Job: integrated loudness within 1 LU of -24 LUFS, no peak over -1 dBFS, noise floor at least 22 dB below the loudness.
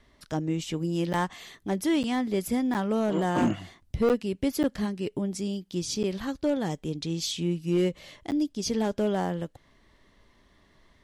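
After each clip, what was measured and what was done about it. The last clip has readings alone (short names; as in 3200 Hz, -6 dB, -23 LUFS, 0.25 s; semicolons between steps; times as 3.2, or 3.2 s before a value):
clipped 0.7%; flat tops at -18.0 dBFS; dropouts 7; longest dropout 8.7 ms; loudness -28.5 LUFS; peak -18.0 dBFS; loudness target -24.0 LUFS
-> clip repair -18 dBFS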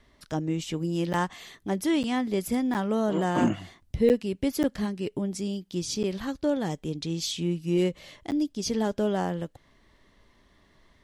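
clipped 0.0%; dropouts 7; longest dropout 8.7 ms
-> interpolate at 1.13/2.03/2.74/4.09/4.63/6.03/8.31, 8.7 ms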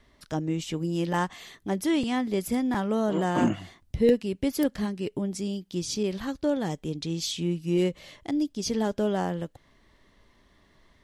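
dropouts 0; loudness -28.0 LUFS; peak -10.5 dBFS; loudness target -24.0 LUFS
-> gain +4 dB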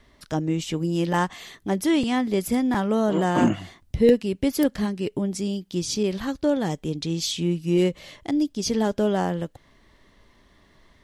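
loudness -24.5 LUFS; peak -6.5 dBFS; noise floor -59 dBFS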